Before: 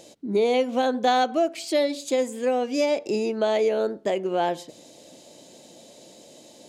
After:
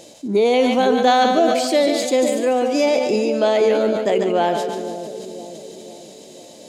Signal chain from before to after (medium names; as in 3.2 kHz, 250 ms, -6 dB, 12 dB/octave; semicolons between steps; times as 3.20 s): two-band feedback delay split 600 Hz, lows 505 ms, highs 145 ms, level -8 dB; decay stretcher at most 35 dB/s; trim +5 dB